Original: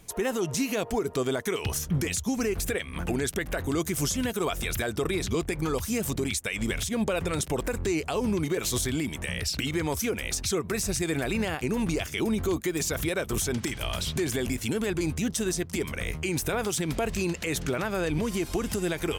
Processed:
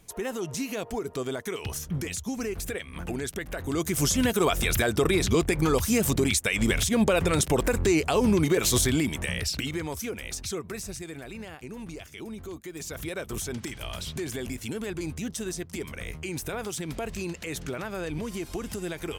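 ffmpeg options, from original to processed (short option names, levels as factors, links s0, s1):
-af "volume=3.98,afade=t=in:st=3.59:d=0.66:silence=0.354813,afade=t=out:st=8.84:d=1.04:silence=0.316228,afade=t=out:st=10.52:d=0.63:silence=0.446684,afade=t=in:st=12.64:d=0.55:silence=0.446684"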